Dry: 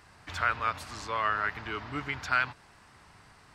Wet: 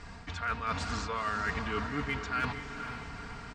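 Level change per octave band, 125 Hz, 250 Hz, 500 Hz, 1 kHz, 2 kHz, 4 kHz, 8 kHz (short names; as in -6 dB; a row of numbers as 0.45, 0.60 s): +4.5, +5.5, +0.5, -3.0, -4.0, -0.5, +1.0 dB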